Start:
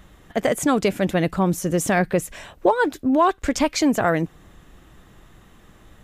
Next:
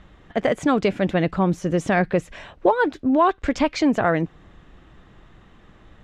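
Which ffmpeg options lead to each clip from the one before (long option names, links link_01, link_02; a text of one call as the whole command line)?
ffmpeg -i in.wav -af "lowpass=3900" out.wav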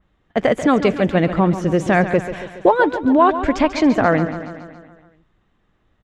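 ffmpeg -i in.wav -filter_complex "[0:a]agate=range=-18dB:threshold=-39dB:ratio=16:detection=peak,asplit=2[link_01][link_02];[link_02]aecho=0:1:140|280|420|560|700|840|980:0.266|0.157|0.0926|0.0546|0.0322|0.019|0.0112[link_03];[link_01][link_03]amix=inputs=2:normalize=0,adynamicequalizer=threshold=0.0112:dfrequency=3100:dqfactor=0.7:tfrequency=3100:tqfactor=0.7:attack=5:release=100:ratio=0.375:range=2.5:mode=cutabove:tftype=highshelf,volume=4dB" out.wav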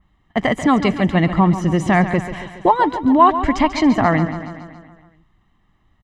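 ffmpeg -i in.wav -af "aecho=1:1:1:0.61" out.wav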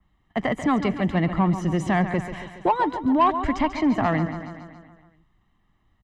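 ffmpeg -i in.wav -filter_complex "[0:a]acrossover=split=120|440|2600[link_01][link_02][link_03][link_04];[link_04]alimiter=level_in=4dB:limit=-24dB:level=0:latency=1:release=337,volume=-4dB[link_05];[link_01][link_02][link_03][link_05]amix=inputs=4:normalize=0,asoftclip=type=tanh:threshold=-5dB,volume=-5.5dB" out.wav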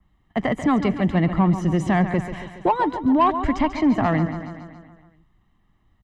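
ffmpeg -i in.wav -af "lowshelf=frequency=490:gain=3.5" out.wav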